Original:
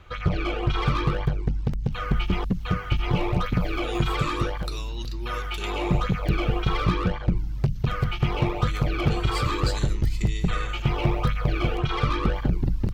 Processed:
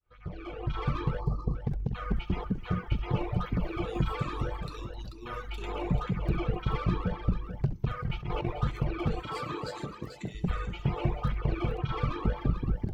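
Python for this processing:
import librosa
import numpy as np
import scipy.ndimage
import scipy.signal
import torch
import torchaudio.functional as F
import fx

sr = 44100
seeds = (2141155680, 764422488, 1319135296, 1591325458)

y = fx.fade_in_head(x, sr, length_s=0.96)
y = fx.high_shelf(y, sr, hz=2300.0, db=-10.0)
y = fx.comb_fb(y, sr, f0_hz=440.0, decay_s=0.45, harmonics='all', damping=0.0, mix_pct=50)
y = fx.echo_multitap(y, sr, ms=(67, 259, 324, 437), db=(-9.0, -12.5, -17.5, -8.0))
y = fx.dereverb_blind(y, sr, rt60_s=1.2)
y = fx.spec_box(y, sr, start_s=1.2, length_s=0.35, low_hz=1300.0, high_hz=4000.0, gain_db=-24)
y = fx.over_compress(y, sr, threshold_db=-31.0, ratio=-0.5, at=(7.99, 8.6))
y = fx.highpass(y, sr, hz=210.0, slope=12, at=(9.22, 10.35))
y = y * librosa.db_to_amplitude(1.0)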